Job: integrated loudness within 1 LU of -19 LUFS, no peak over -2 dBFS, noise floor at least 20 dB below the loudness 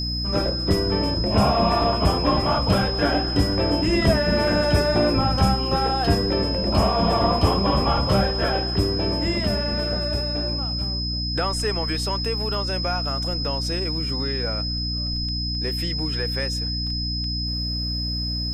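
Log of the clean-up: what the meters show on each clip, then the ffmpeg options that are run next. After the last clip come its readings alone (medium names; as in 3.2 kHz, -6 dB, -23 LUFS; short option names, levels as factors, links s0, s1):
hum 60 Hz; highest harmonic 300 Hz; hum level -26 dBFS; steady tone 5.1 kHz; tone level -27 dBFS; loudness -22.0 LUFS; peak level -5.0 dBFS; loudness target -19.0 LUFS
-> -af "bandreject=f=60:t=h:w=6,bandreject=f=120:t=h:w=6,bandreject=f=180:t=h:w=6,bandreject=f=240:t=h:w=6,bandreject=f=300:t=h:w=6"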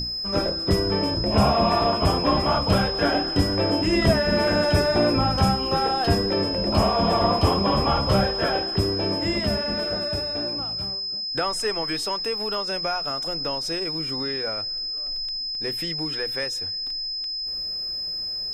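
hum not found; steady tone 5.1 kHz; tone level -27 dBFS
-> -af "bandreject=f=5100:w=30"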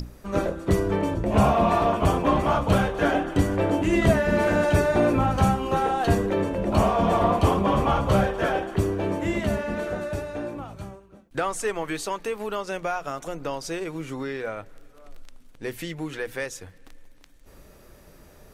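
steady tone not found; loudness -24.5 LUFS; peak level -6.5 dBFS; loudness target -19.0 LUFS
-> -af "volume=1.88,alimiter=limit=0.794:level=0:latency=1"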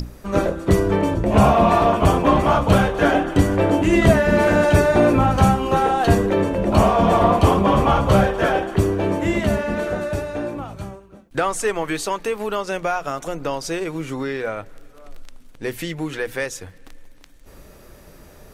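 loudness -19.0 LUFS; peak level -2.0 dBFS; noise floor -46 dBFS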